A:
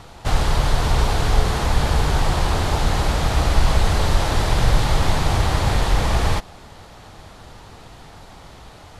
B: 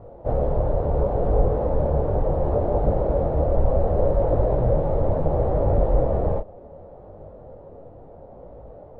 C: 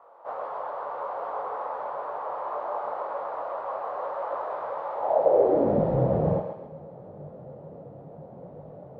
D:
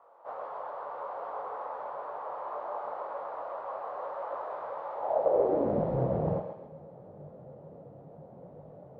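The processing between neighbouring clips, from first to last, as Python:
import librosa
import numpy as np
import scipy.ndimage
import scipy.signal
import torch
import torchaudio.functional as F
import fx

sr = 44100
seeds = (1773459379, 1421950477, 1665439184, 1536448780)

y1 = fx.lowpass_res(x, sr, hz=550.0, q=4.9)
y1 = fx.detune_double(y1, sr, cents=24)
y2 = fx.filter_sweep_highpass(y1, sr, from_hz=1100.0, to_hz=150.0, start_s=4.92, end_s=5.91, q=3.5)
y2 = fx.echo_thinned(y2, sr, ms=132, feedback_pct=48, hz=620.0, wet_db=-4.5)
y2 = y2 * 10.0 ** (-2.5 / 20.0)
y3 = fx.doppler_dist(y2, sr, depth_ms=0.28)
y3 = y3 * 10.0 ** (-5.5 / 20.0)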